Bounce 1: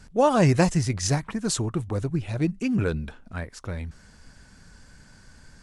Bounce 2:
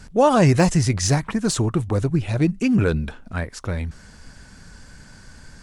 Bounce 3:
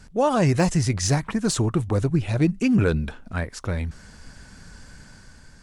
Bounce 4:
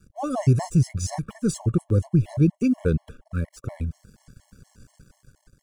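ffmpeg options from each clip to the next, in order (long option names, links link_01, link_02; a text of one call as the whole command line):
ffmpeg -i in.wav -filter_complex "[0:a]deesser=0.5,asplit=2[link_01][link_02];[link_02]alimiter=limit=-17.5dB:level=0:latency=1:release=61,volume=1dB[link_03];[link_01][link_03]amix=inputs=2:normalize=0" out.wav
ffmpeg -i in.wav -af "dynaudnorm=framelen=110:gausssize=11:maxgain=4.5dB,volume=-5dB" out.wav
ffmpeg -i in.wav -af "aeval=exprs='sgn(val(0))*max(abs(val(0))-0.00398,0)':channel_layout=same,equalizer=frequency=125:width_type=o:width=1:gain=6,equalizer=frequency=1000:width_type=o:width=1:gain=-4,equalizer=frequency=2000:width_type=o:width=1:gain=-8,equalizer=frequency=4000:width_type=o:width=1:gain=-7,afftfilt=real='re*gt(sin(2*PI*4.2*pts/sr)*(1-2*mod(floor(b*sr/1024/560),2)),0)':imag='im*gt(sin(2*PI*4.2*pts/sr)*(1-2*mod(floor(b*sr/1024/560),2)),0)':win_size=1024:overlap=0.75" out.wav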